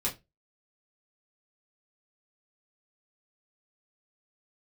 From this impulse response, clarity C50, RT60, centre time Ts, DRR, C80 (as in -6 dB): 15.0 dB, 0.20 s, 17 ms, -5.0 dB, 22.5 dB